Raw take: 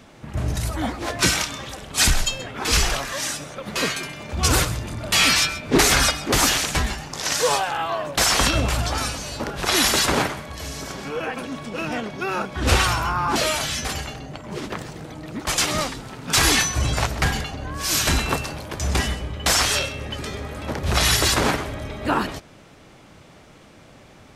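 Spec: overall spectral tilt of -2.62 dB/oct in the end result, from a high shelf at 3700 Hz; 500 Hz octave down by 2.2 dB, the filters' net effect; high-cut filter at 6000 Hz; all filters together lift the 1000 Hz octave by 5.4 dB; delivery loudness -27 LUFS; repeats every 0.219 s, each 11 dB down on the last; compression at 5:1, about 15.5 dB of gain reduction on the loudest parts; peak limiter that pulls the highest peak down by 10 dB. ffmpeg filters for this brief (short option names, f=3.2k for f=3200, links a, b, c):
-af "lowpass=6k,equalizer=f=500:t=o:g=-5.5,equalizer=f=1k:t=o:g=7.5,highshelf=f=3.7k:g=8.5,acompressor=threshold=-29dB:ratio=5,alimiter=limit=-21dB:level=0:latency=1,aecho=1:1:219|438|657:0.282|0.0789|0.0221,volume=4dB"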